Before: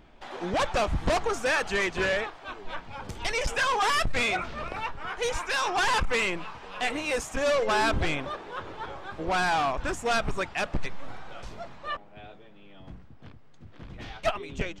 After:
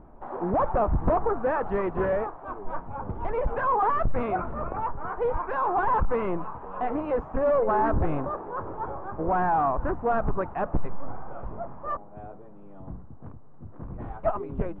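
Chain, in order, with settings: Chebyshev low-pass 1.1 kHz, order 3; in parallel at -0.5 dB: peak limiter -26 dBFS, peak gain reduction 9.5 dB; on the sum: loudspeaker Doppler distortion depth 0.43 ms

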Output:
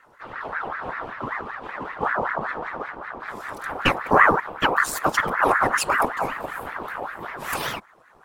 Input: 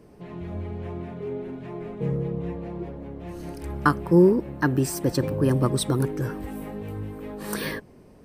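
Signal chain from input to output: waveshaping leveller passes 1; whisper effect; ring modulator with a swept carrier 1.1 kHz, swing 45%, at 5.2 Hz; trim +1 dB

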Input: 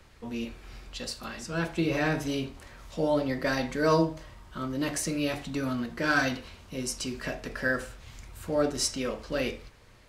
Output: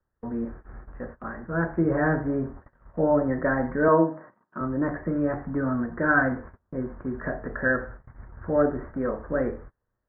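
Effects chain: steep low-pass 1.8 kHz 72 dB/octave; gate -45 dBFS, range -28 dB; 3.88–4.61 s: high-pass 180 Hz 24 dB/octave; trim +4.5 dB

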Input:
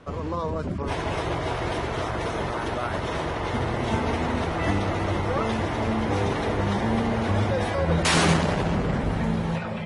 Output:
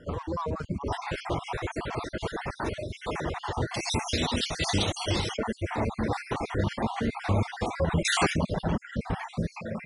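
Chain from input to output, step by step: random holes in the spectrogram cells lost 49%; 3.74–5.37 s: resonant high shelf 2.5 kHz +13.5 dB, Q 1.5; reverb removal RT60 1.8 s

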